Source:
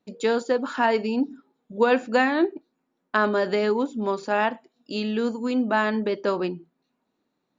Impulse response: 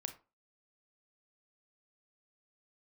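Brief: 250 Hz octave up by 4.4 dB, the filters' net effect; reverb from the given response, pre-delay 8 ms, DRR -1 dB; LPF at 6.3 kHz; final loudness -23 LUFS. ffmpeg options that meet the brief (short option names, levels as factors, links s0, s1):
-filter_complex "[0:a]lowpass=6300,equalizer=f=250:t=o:g=5,asplit=2[s0][s1];[1:a]atrim=start_sample=2205,adelay=8[s2];[s1][s2]afir=irnorm=-1:irlink=0,volume=1.41[s3];[s0][s3]amix=inputs=2:normalize=0,volume=0.562"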